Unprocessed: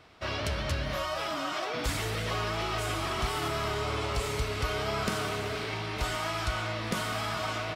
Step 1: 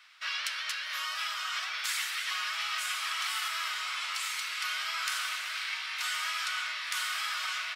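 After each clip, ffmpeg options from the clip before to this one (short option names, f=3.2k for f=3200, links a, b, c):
-af "highpass=f=1.4k:w=0.5412,highpass=f=1.4k:w=1.3066,volume=3.5dB"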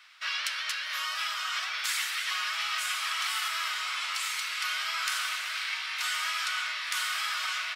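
-af "acontrast=41,volume=-3.5dB"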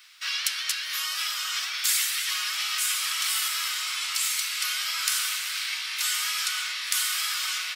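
-af "crystalizer=i=6:c=0,volume=-6.5dB"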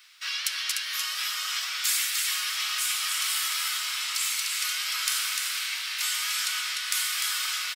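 -af "aecho=1:1:299:0.596,volume=-2dB"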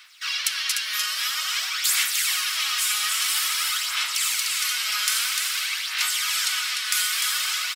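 -af "aphaser=in_gain=1:out_gain=1:delay=4.8:decay=0.47:speed=0.5:type=sinusoidal,volume=3dB"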